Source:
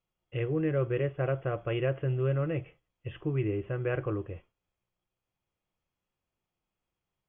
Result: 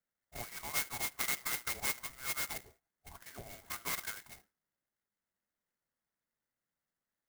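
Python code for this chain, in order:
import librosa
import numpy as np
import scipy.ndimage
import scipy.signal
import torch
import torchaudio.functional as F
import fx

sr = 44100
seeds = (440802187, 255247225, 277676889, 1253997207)

y = scipy.signal.sosfilt(scipy.signal.butter(12, 540.0, 'highpass', fs=sr, output='sos'), x)
y = fx.env_lowpass_down(y, sr, base_hz=1200.0, full_db=-32.0)
y = fx.freq_invert(y, sr, carrier_hz=2700)
y = fx.clock_jitter(y, sr, seeds[0], jitter_ms=0.094)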